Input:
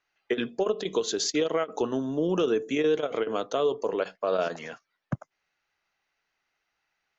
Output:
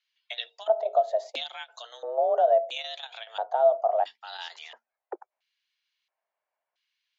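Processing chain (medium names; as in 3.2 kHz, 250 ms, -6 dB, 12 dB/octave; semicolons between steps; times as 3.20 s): LFO band-pass square 0.74 Hz 440–3500 Hz; frequency shift +230 Hz; trim +5.5 dB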